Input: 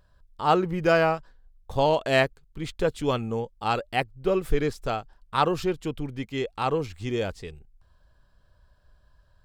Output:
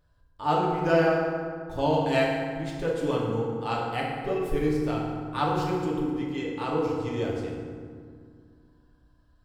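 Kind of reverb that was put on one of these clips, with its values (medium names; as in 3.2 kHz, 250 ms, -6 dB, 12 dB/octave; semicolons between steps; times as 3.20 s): FDN reverb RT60 2 s, low-frequency decay 1.5×, high-frequency decay 0.55×, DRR -4 dB; trim -8 dB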